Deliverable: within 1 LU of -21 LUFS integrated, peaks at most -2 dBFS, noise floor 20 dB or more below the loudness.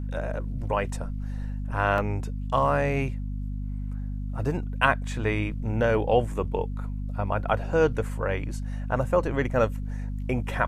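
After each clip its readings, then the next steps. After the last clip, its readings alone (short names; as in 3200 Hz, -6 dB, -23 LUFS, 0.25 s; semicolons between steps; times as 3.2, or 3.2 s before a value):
dropouts 1; longest dropout 1.7 ms; hum 50 Hz; harmonics up to 250 Hz; hum level -29 dBFS; loudness -27.5 LUFS; peak -5.0 dBFS; loudness target -21.0 LUFS
-> interpolate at 1.98, 1.7 ms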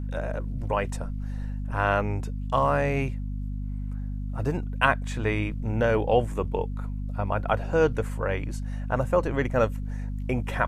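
dropouts 0; hum 50 Hz; harmonics up to 250 Hz; hum level -29 dBFS
-> de-hum 50 Hz, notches 5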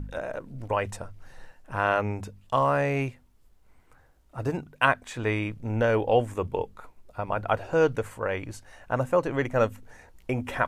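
hum none; loudness -27.5 LUFS; peak -5.0 dBFS; loudness target -21.0 LUFS
-> gain +6.5 dB; limiter -2 dBFS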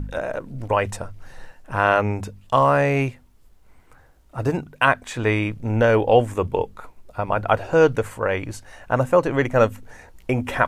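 loudness -21.5 LUFS; peak -2.0 dBFS; noise floor -53 dBFS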